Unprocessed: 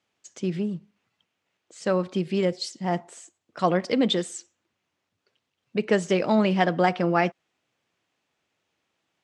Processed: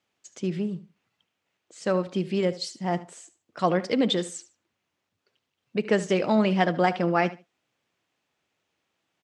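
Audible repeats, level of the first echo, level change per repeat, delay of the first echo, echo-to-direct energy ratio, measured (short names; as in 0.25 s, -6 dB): 2, -16.5 dB, -14.0 dB, 74 ms, -16.5 dB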